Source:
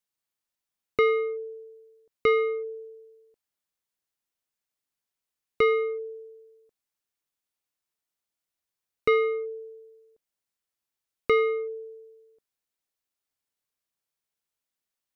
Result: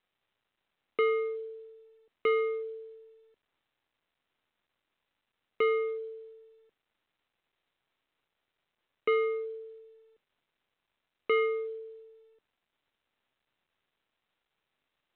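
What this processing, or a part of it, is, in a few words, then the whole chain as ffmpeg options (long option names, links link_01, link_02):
telephone: -filter_complex "[0:a]asplit=3[link_01][link_02][link_03];[link_01]afade=type=out:start_time=9.75:duration=0.02[link_04];[link_02]adynamicequalizer=threshold=0.0112:dfrequency=2600:dqfactor=0.82:tfrequency=2600:tqfactor=0.82:attack=5:release=100:ratio=0.375:range=2:mode=boostabove:tftype=bell,afade=type=in:start_time=9.75:duration=0.02,afade=type=out:start_time=11.45:duration=0.02[link_05];[link_03]afade=type=in:start_time=11.45:duration=0.02[link_06];[link_04][link_05][link_06]amix=inputs=3:normalize=0,highpass=260,lowpass=3200,asoftclip=type=tanh:threshold=-15dB,volume=-3dB" -ar 8000 -c:a pcm_mulaw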